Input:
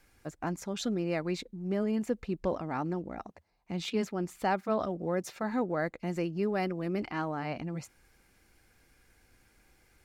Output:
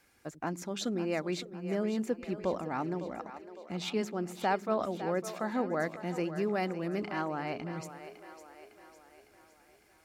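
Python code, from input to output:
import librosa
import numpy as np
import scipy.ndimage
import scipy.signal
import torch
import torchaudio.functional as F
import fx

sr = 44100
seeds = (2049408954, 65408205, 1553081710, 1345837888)

p1 = fx.highpass(x, sr, hz=180.0, slope=6)
y = p1 + fx.echo_split(p1, sr, split_hz=330.0, low_ms=89, high_ms=556, feedback_pct=52, wet_db=-11.5, dry=0)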